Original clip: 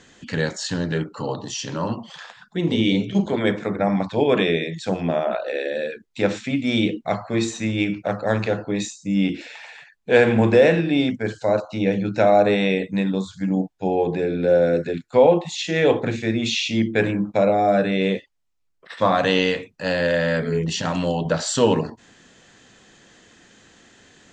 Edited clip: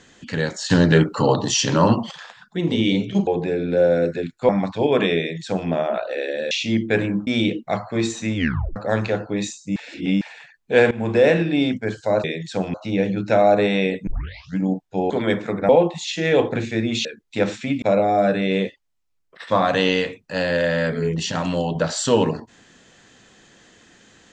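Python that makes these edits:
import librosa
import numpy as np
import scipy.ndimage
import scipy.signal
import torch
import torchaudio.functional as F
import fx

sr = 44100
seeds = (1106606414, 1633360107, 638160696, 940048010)

y = fx.edit(x, sr, fx.clip_gain(start_s=0.7, length_s=1.41, db=9.5),
    fx.swap(start_s=3.27, length_s=0.59, other_s=13.98, other_length_s=1.22),
    fx.duplicate(start_s=4.56, length_s=0.5, to_s=11.62),
    fx.swap(start_s=5.88, length_s=0.77, other_s=16.56, other_length_s=0.76),
    fx.tape_stop(start_s=7.74, length_s=0.4),
    fx.reverse_span(start_s=9.14, length_s=0.45),
    fx.fade_in_from(start_s=10.29, length_s=0.37, floor_db=-17.5),
    fx.tape_start(start_s=12.95, length_s=0.5), tone=tone)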